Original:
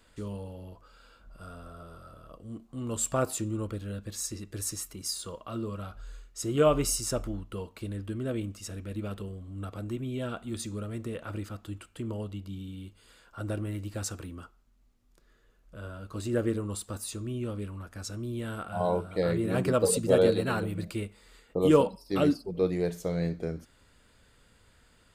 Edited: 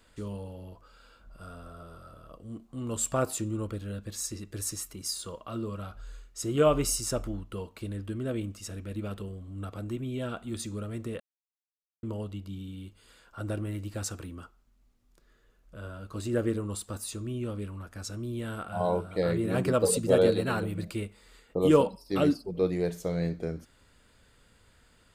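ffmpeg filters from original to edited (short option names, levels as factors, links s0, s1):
-filter_complex "[0:a]asplit=3[s0][s1][s2];[s0]atrim=end=11.2,asetpts=PTS-STARTPTS,afade=t=out:st=11.196:d=0.004:c=hsin[s3];[s1]atrim=start=11.2:end=12.03,asetpts=PTS-STARTPTS,volume=0[s4];[s2]atrim=start=12.03,asetpts=PTS-STARTPTS,afade=t=in:d=0.004:c=hsin[s5];[s3][s4][s5]concat=n=3:v=0:a=1"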